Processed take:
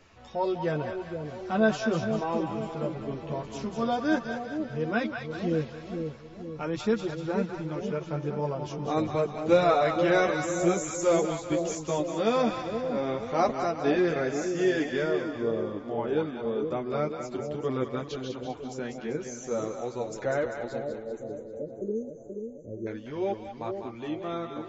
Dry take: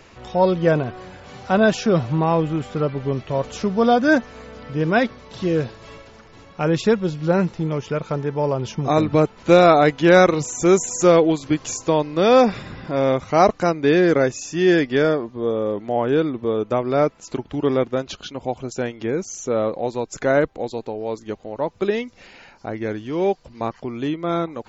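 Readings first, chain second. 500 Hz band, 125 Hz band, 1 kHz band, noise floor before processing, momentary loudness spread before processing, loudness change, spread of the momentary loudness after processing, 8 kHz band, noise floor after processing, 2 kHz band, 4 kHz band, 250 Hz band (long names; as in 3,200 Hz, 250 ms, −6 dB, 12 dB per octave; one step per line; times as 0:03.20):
−9.0 dB, −10.5 dB, −9.0 dB, −48 dBFS, 14 LU, −9.5 dB, 11 LU, can't be measured, −44 dBFS, −9.0 dB, −9.5 dB, −9.0 dB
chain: multi-voice chorus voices 2, 0.42 Hz, delay 11 ms, depth 2.6 ms
time-frequency box erased 0:20.79–0:22.87, 620–5,900 Hz
echo with a time of its own for lows and highs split 680 Hz, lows 477 ms, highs 196 ms, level −6 dB
level −7.5 dB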